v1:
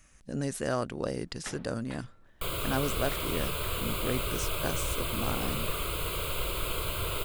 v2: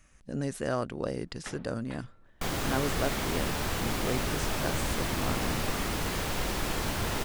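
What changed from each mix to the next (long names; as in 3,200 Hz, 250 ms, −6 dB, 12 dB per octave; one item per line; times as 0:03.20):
second sound: remove phaser with its sweep stopped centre 1,200 Hz, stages 8
master: add high-shelf EQ 4,200 Hz −5.5 dB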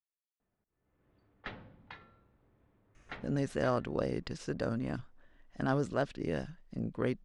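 speech: entry +2.95 s
second sound: muted
master: add high-frequency loss of the air 84 metres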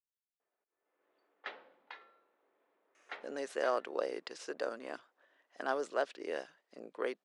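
master: add high-pass filter 400 Hz 24 dB per octave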